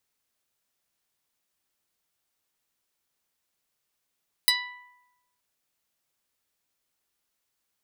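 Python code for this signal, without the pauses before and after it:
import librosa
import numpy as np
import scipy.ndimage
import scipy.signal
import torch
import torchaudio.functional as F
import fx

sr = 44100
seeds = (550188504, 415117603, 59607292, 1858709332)

y = fx.pluck(sr, length_s=0.92, note=83, decay_s=1.06, pick=0.13, brightness='medium')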